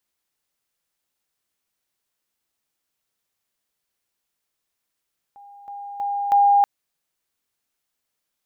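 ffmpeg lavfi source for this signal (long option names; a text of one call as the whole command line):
ffmpeg -f lavfi -i "aevalsrc='pow(10,(-42+10*floor(t/0.32))/20)*sin(2*PI*808*t)':duration=1.28:sample_rate=44100" out.wav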